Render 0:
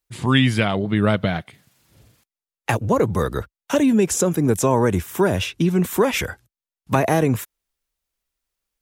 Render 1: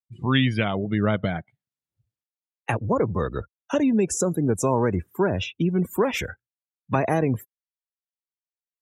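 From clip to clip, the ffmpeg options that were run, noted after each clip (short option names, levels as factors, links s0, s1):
-af "afftdn=nr=33:nf=-31,volume=0.631"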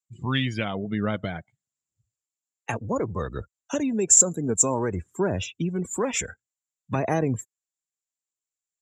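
-af "lowpass=f=7300:t=q:w=13,aphaser=in_gain=1:out_gain=1:delay=4.5:decay=0.27:speed=0.56:type=sinusoidal,volume=0.596"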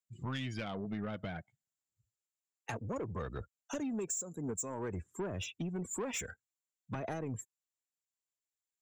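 -af "acompressor=threshold=0.0562:ratio=20,asoftclip=type=tanh:threshold=0.0562,volume=0.501"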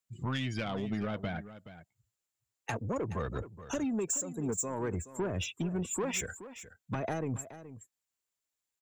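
-af "aecho=1:1:424:0.2,volume=1.68"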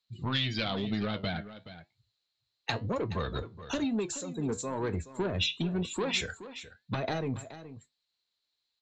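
-af "flanger=delay=8.9:depth=5.4:regen=-69:speed=1:shape=triangular,lowpass=f=4100:t=q:w=9.6,volume=2"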